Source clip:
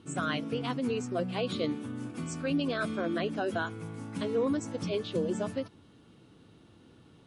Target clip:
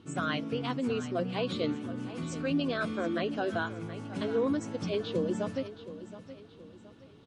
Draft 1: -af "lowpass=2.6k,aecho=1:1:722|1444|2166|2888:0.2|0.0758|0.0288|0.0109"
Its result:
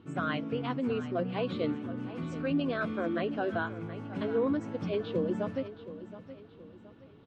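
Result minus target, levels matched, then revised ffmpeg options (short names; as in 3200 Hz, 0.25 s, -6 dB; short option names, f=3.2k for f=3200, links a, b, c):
8000 Hz band -15.0 dB
-af "lowpass=6.8k,aecho=1:1:722|1444|2166|2888:0.2|0.0758|0.0288|0.0109"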